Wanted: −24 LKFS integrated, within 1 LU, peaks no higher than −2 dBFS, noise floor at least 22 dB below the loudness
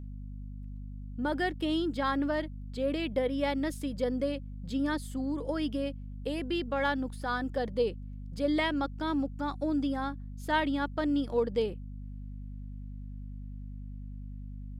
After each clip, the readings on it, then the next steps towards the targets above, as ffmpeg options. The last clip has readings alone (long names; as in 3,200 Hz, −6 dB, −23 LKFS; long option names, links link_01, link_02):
mains hum 50 Hz; hum harmonics up to 250 Hz; level of the hum −39 dBFS; integrated loudness −32.0 LKFS; sample peak −16.5 dBFS; target loudness −24.0 LKFS
→ -af "bandreject=frequency=50:width_type=h:width=4,bandreject=frequency=100:width_type=h:width=4,bandreject=frequency=150:width_type=h:width=4,bandreject=frequency=200:width_type=h:width=4,bandreject=frequency=250:width_type=h:width=4"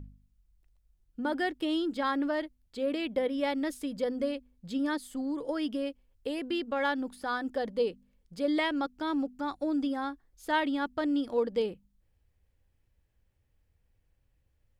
mains hum none found; integrated loudness −32.0 LKFS; sample peak −17.0 dBFS; target loudness −24.0 LKFS
→ -af "volume=8dB"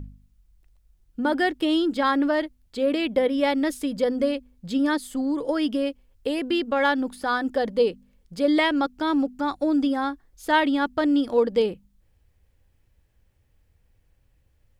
integrated loudness −24.0 LKFS; sample peak −9.0 dBFS; background noise floor −65 dBFS